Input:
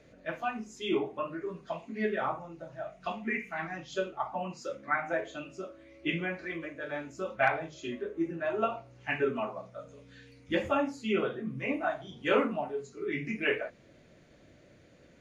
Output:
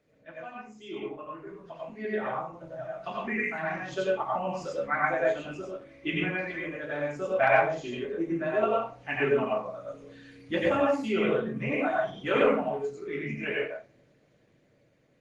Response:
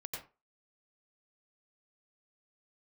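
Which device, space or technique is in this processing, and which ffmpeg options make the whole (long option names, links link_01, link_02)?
far-field microphone of a smart speaker: -filter_complex "[0:a]asettb=1/sr,asplit=3[link_01][link_02][link_03];[link_01]atrim=end=6.894[link_04];[link_02]atrim=start=6.89:end=7.97,asetpts=PTS-STARTPTS,afade=type=in:duration=0.004:curve=qsin,afade=type=out:start_time=1.076:duration=0.004:curve=qsin,equalizer=frequency=620:width=3.2:gain=4.5[link_05];[link_03]atrim=start=7.966[link_06];[link_04][link_05]acrossfade=duration=0.004:curve1=hsin:curve2=qsin[link_07];[link_07][link_06]acrossfade=duration=0.004:curve1=qsin:curve2=hsin[link_08];[1:a]atrim=start_sample=2205[link_09];[link_08][link_09]afir=irnorm=-1:irlink=0,highpass=87,dynaudnorm=framelen=590:gausssize=9:maxgain=12.5dB,volume=-5.5dB" -ar 48000 -c:a libopus -b:a 24k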